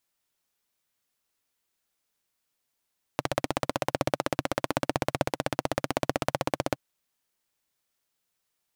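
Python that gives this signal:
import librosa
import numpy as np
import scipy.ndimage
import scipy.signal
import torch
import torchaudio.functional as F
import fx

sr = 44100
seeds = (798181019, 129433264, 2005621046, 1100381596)

y = fx.engine_single(sr, seeds[0], length_s=3.57, rpm=1900, resonances_hz=(140.0, 290.0, 550.0))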